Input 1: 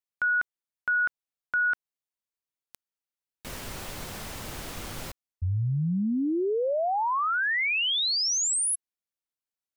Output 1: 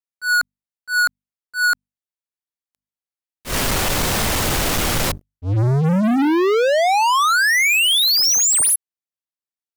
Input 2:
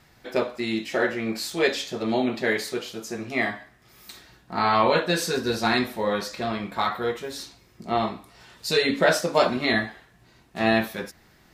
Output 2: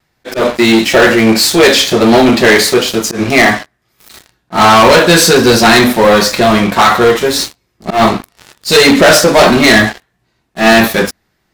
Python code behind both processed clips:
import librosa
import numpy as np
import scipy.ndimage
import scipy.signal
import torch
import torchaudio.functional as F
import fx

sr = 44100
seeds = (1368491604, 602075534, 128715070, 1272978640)

y = fx.hum_notches(x, sr, base_hz=50, count=5)
y = fx.leveller(y, sr, passes=5)
y = fx.auto_swell(y, sr, attack_ms=116.0)
y = fx.vibrato(y, sr, rate_hz=1.5, depth_cents=31.0)
y = y * librosa.db_to_amplitude(4.5)